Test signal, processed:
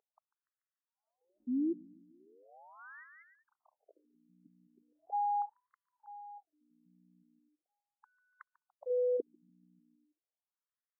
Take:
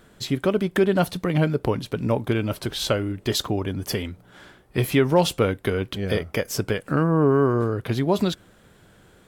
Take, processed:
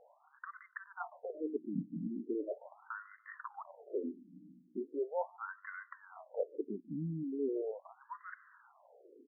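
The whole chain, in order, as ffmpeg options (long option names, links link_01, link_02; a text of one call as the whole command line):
ffmpeg -i in.wav -filter_complex "[0:a]areverse,acompressor=threshold=-29dB:ratio=20,areverse,aeval=exprs='val(0)+0.00126*(sin(2*PI*60*n/s)+sin(2*PI*2*60*n/s)/2+sin(2*PI*3*60*n/s)/3+sin(2*PI*4*60*n/s)/4+sin(2*PI*5*60*n/s)/5)':channel_layout=same,adynamicsmooth=sensitivity=7.5:basefreq=5500,asplit=2[link_01][link_02];[link_02]adelay=145,lowpass=frequency=4600:poles=1,volume=-21dB,asplit=2[link_03][link_04];[link_04]adelay=145,lowpass=frequency=4600:poles=1,volume=0.51,asplit=2[link_05][link_06];[link_06]adelay=145,lowpass=frequency=4600:poles=1,volume=0.51,asplit=2[link_07][link_08];[link_08]adelay=145,lowpass=frequency=4600:poles=1,volume=0.51[link_09];[link_01][link_03][link_05][link_07][link_09]amix=inputs=5:normalize=0,afftfilt=real='re*between(b*sr/1024,220*pow(1500/220,0.5+0.5*sin(2*PI*0.39*pts/sr))/1.41,220*pow(1500/220,0.5+0.5*sin(2*PI*0.39*pts/sr))*1.41)':imag='im*between(b*sr/1024,220*pow(1500/220,0.5+0.5*sin(2*PI*0.39*pts/sr))/1.41,220*pow(1500/220,0.5+0.5*sin(2*PI*0.39*pts/sr))*1.41)':win_size=1024:overlap=0.75" out.wav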